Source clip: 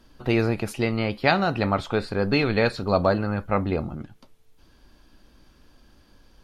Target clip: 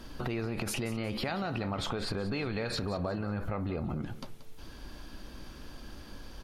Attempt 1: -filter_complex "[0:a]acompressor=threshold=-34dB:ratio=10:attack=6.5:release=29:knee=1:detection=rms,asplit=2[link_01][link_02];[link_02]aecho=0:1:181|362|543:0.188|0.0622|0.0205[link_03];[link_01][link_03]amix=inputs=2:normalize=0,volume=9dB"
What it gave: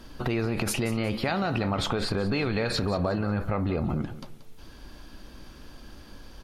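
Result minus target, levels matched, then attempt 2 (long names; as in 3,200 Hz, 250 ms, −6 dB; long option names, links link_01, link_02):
downward compressor: peak gain reduction −7 dB
-filter_complex "[0:a]acompressor=threshold=-41.5dB:ratio=10:attack=6.5:release=29:knee=1:detection=rms,asplit=2[link_01][link_02];[link_02]aecho=0:1:181|362|543:0.188|0.0622|0.0205[link_03];[link_01][link_03]amix=inputs=2:normalize=0,volume=9dB"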